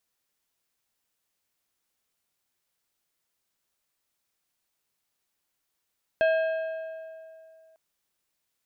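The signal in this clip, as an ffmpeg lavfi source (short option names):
-f lavfi -i "aevalsrc='0.119*pow(10,-3*t/2.47)*sin(2*PI*645*t)+0.0473*pow(10,-3*t/1.876)*sin(2*PI*1612.5*t)+0.0188*pow(10,-3*t/1.63)*sin(2*PI*2580*t)+0.0075*pow(10,-3*t/1.524)*sin(2*PI*3225*t)+0.00299*pow(10,-3*t/1.409)*sin(2*PI*4192.5*t)':d=1.55:s=44100"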